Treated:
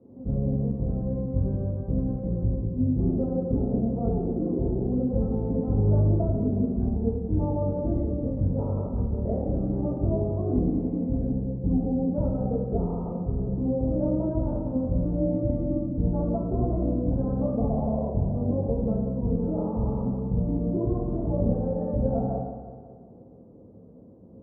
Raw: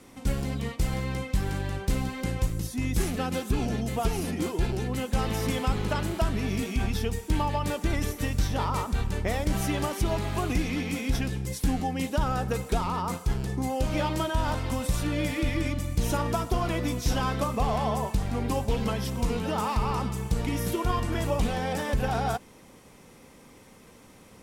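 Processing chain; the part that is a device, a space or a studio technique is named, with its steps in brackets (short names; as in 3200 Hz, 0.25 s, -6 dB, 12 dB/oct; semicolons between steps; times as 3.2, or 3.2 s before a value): HPF 65 Hz; next room (LPF 590 Hz 24 dB/oct; reverb RT60 0.80 s, pre-delay 4 ms, DRR -5 dB); split-band echo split 320 Hz, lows 95 ms, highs 0.183 s, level -10 dB; gain -3.5 dB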